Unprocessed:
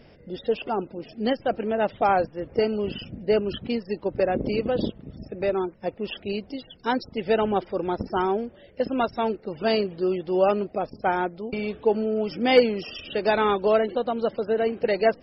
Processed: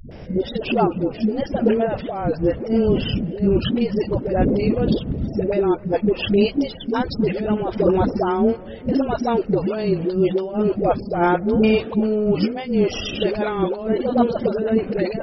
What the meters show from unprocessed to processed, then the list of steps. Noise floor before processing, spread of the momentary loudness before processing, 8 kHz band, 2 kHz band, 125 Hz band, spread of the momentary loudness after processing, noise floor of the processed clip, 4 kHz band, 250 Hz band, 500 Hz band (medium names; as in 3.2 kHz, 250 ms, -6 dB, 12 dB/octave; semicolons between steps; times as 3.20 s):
-52 dBFS, 10 LU, no reading, 0.0 dB, +12.5 dB, 5 LU, -35 dBFS, +3.0 dB, +9.5 dB, +3.5 dB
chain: tilt EQ -1.5 dB/octave; compressor with a negative ratio -25 dBFS, ratio -0.5; phase dispersion highs, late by 108 ms, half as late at 320 Hz; vibrato 0.79 Hz 61 cents; on a send: filtered feedback delay 260 ms, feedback 47%, low-pass 1.7 kHz, level -22.5 dB; on the sum: trim +7.5 dB